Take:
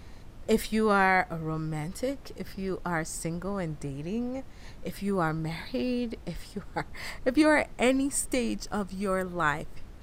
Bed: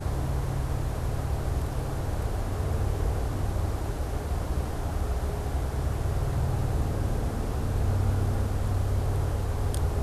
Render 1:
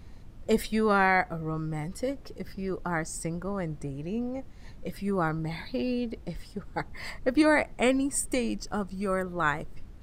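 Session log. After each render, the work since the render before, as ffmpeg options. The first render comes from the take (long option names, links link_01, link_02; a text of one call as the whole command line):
ffmpeg -i in.wav -af "afftdn=noise_reduction=6:noise_floor=-46" out.wav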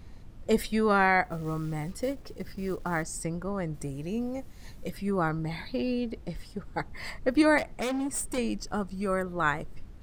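ffmpeg -i in.wav -filter_complex "[0:a]asettb=1/sr,asplit=3[link_01][link_02][link_03];[link_01]atrim=end=1.244[link_04];[link_02]atrim=start=1.24:end=3.03,asetpts=PTS-STARTPTS,afade=type=in:duration=0.004:curve=qsin,afade=type=out:start_time=1.786:duration=0.004:curve=qsin,acrusher=bits=6:mode=log:mix=0:aa=0.000001[link_05];[link_03]atrim=start=3.026[link_06];[link_04][link_05]acrossfade=duration=0.004:curve1=hsin:curve2=qsin[link_07];[link_07][link_06]acrossfade=duration=0.004:curve1=qsin:curve2=hsin,asettb=1/sr,asplit=3[link_08][link_09][link_10];[link_08]atrim=end=3.744[link_11];[link_09]atrim=start=3.74:end=4.9,asetpts=PTS-STARTPTS,afade=type=in:duration=0.004:curve=qsin,afade=type=out:start_time=1.156:duration=0.004:curve=qsin,aemphasis=mode=production:type=50kf[link_12];[link_10]atrim=start=4.896[link_13];[link_11][link_12]acrossfade=duration=0.004:curve1=hsin:curve2=qsin[link_14];[link_14][link_13]acrossfade=duration=0.004:curve1=qsin:curve2=hsin,asettb=1/sr,asplit=3[link_15][link_16][link_17];[link_15]atrim=end=7.584[link_18];[link_16]atrim=start=7.58:end=8.38,asetpts=PTS-STARTPTS,afade=type=in:duration=0.004:curve=qsin,afade=type=out:start_time=0.796:duration=0.004:curve=qsin,asoftclip=type=hard:threshold=-28dB[link_19];[link_17]atrim=start=8.376[link_20];[link_18][link_19]acrossfade=duration=0.004:curve1=hsin:curve2=qsin[link_21];[link_21][link_20]acrossfade=duration=0.004:curve1=qsin:curve2=hsin" out.wav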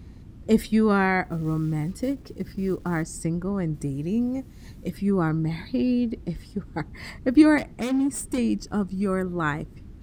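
ffmpeg -i in.wav -af "highpass=42,lowshelf=frequency=420:width_type=q:width=1.5:gain=6.5" out.wav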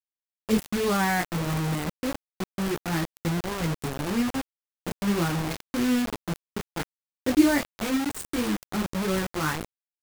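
ffmpeg -i in.wav -af "flanger=delay=17.5:depth=6.6:speed=0.3,acrusher=bits=4:mix=0:aa=0.000001" out.wav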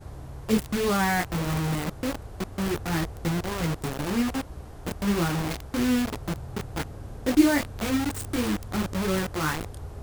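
ffmpeg -i in.wav -i bed.wav -filter_complex "[1:a]volume=-11.5dB[link_01];[0:a][link_01]amix=inputs=2:normalize=0" out.wav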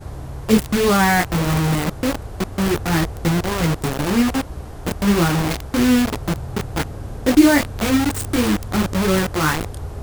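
ffmpeg -i in.wav -af "volume=8.5dB,alimiter=limit=-2dB:level=0:latency=1" out.wav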